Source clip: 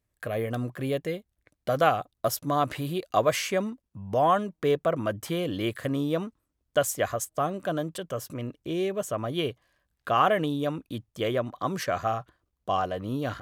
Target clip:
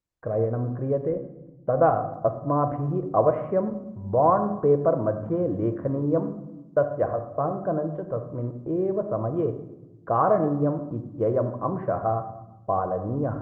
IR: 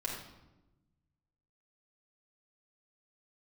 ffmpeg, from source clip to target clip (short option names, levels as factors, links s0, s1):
-filter_complex "[0:a]agate=range=0.141:threshold=0.00631:ratio=16:detection=peak,lowpass=f=1100:w=0.5412,lowpass=f=1100:w=1.3066,asettb=1/sr,asplit=3[s0][s1][s2];[s0]atrim=end=5.994[s3];[s1]atrim=start=5.99:end=7.91,asetpts=PTS-STARTPTS,afade=t=in:d=0.004:c=qsin,afade=t=out:st=1.916:d=0.004:c=qsin,bandreject=f=60:t=h:w=6,bandreject=f=120:t=h:w=6,bandreject=f=180:t=h:w=6,bandreject=f=240:t=h:w=6,bandreject=f=300:t=h:w=6,bandreject=f=360:t=h:w=6,bandreject=f=420:t=h:w=6,bandreject=f=480:t=h:w=6[s4];[s2]atrim=start=7.906[s5];[s3][s4]acrossfade=d=0.004:c1=hsin:c2=qsin[s6];[s6][s5]acrossfade=d=0.004:c1=qsin:c2=hsin,asplit=2[s7][s8];[1:a]atrim=start_sample=2205,lowpass=4700[s9];[s8][s9]afir=irnorm=-1:irlink=0,volume=0.596[s10];[s7][s10]amix=inputs=2:normalize=0" -ar 48000 -c:a libopus -b:a 24k